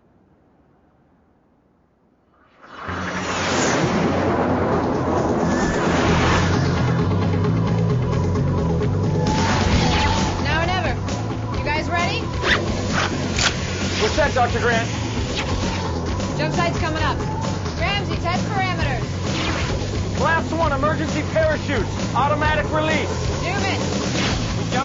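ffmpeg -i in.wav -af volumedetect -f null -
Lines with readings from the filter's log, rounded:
mean_volume: -20.6 dB
max_volume: -6.3 dB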